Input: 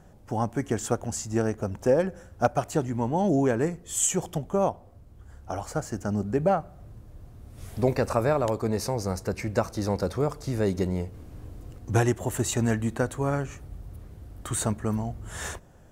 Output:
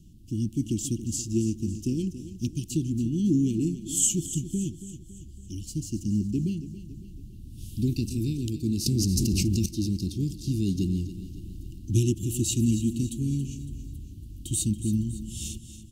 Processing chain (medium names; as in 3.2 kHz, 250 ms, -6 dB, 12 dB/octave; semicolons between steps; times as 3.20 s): Chebyshev band-stop 340–2800 Hz, order 5; feedback delay 279 ms, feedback 49%, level -13 dB; 8.86–9.66 s: level flattener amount 100%; trim +2.5 dB